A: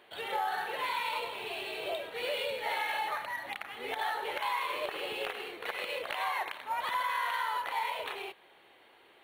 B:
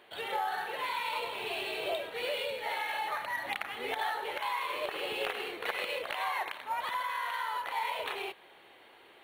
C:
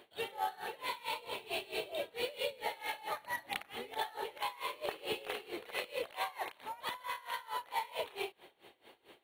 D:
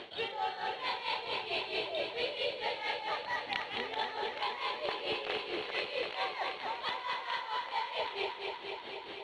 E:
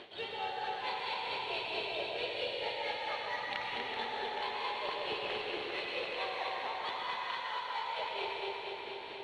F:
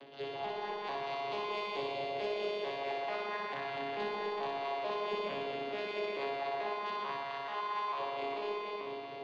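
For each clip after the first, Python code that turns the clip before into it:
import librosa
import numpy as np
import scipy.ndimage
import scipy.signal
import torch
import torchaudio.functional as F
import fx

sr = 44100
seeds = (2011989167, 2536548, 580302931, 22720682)

y1 = fx.rider(x, sr, range_db=10, speed_s=0.5)
y2 = fx.peak_eq(y1, sr, hz=1500.0, db=-8.0, octaves=2.0)
y2 = y2 * 10.0 ** (-21 * (0.5 - 0.5 * np.cos(2.0 * np.pi * 4.5 * np.arange(len(y2)) / sr)) / 20.0)
y2 = F.gain(torch.from_numpy(y2), 5.0).numpy()
y3 = fx.ladder_lowpass(y2, sr, hz=5700.0, resonance_pct=30)
y3 = fx.echo_feedback(y3, sr, ms=241, feedback_pct=58, wet_db=-8.0)
y3 = fx.env_flatten(y3, sr, amount_pct=50)
y3 = F.gain(torch.from_numpy(y3), 6.0).numpy()
y4 = fx.rev_plate(y3, sr, seeds[0], rt60_s=2.3, hf_ratio=0.75, predelay_ms=85, drr_db=-1.0)
y4 = F.gain(torch.from_numpy(y4), -4.5).numpy()
y5 = fx.vocoder_arp(y4, sr, chord='bare fifth', root=49, every_ms=440)
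y5 = 10.0 ** (-26.5 / 20.0) * np.tanh(y5 / 10.0 ** (-26.5 / 20.0))
y5 = fx.room_flutter(y5, sr, wall_m=10.4, rt60_s=0.95)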